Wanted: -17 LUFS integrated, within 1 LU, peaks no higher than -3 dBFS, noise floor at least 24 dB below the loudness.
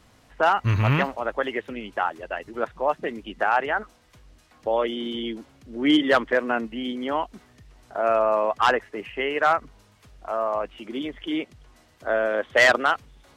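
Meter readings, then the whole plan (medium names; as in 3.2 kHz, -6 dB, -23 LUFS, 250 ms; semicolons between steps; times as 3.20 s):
loudness -24.0 LUFS; peak level -8.5 dBFS; loudness target -17.0 LUFS
-> trim +7 dB; peak limiter -3 dBFS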